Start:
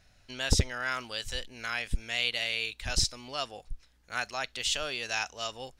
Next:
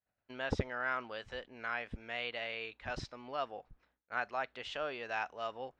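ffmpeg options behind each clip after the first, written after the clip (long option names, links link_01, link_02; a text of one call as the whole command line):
ffmpeg -i in.wav -af "lowpass=1400,agate=range=-33dB:threshold=-50dB:ratio=3:detection=peak,highpass=frequency=340:poles=1,volume=1dB" out.wav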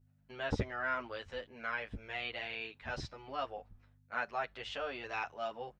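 ffmpeg -i in.wav -filter_complex "[0:a]aeval=exprs='val(0)+0.000562*(sin(2*PI*50*n/s)+sin(2*PI*2*50*n/s)/2+sin(2*PI*3*50*n/s)/3+sin(2*PI*4*50*n/s)/4+sin(2*PI*5*50*n/s)/5)':channel_layout=same,equalizer=frequency=91:width_type=o:width=0.32:gain=6.5,asplit=2[link_01][link_02];[link_02]adelay=9.6,afreqshift=-0.75[link_03];[link_01][link_03]amix=inputs=2:normalize=1,volume=3dB" out.wav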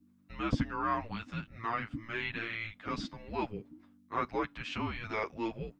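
ffmpeg -i in.wav -af "afreqshift=-340,volume=3.5dB" out.wav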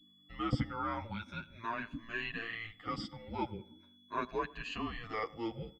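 ffmpeg -i in.wav -filter_complex "[0:a]afftfilt=real='re*pow(10,15/40*sin(2*PI*(1.5*log(max(b,1)*sr/1024/100)/log(2)-(0.41)*(pts-256)/sr)))':imag='im*pow(10,15/40*sin(2*PI*(1.5*log(max(b,1)*sr/1024/100)/log(2)-(0.41)*(pts-256)/sr)))':win_size=1024:overlap=0.75,aeval=exprs='val(0)+0.00126*sin(2*PI*3400*n/s)':channel_layout=same,asplit=2[link_01][link_02];[link_02]adelay=101,lowpass=frequency=1900:poles=1,volume=-20.5dB,asplit=2[link_03][link_04];[link_04]adelay=101,lowpass=frequency=1900:poles=1,volume=0.46,asplit=2[link_05][link_06];[link_06]adelay=101,lowpass=frequency=1900:poles=1,volume=0.46[link_07];[link_01][link_03][link_05][link_07]amix=inputs=4:normalize=0,volume=-5dB" out.wav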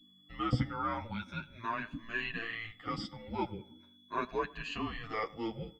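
ffmpeg -i in.wav -af "flanger=delay=4:depth=4.3:regen=74:speed=0.92:shape=triangular,volume=6dB" out.wav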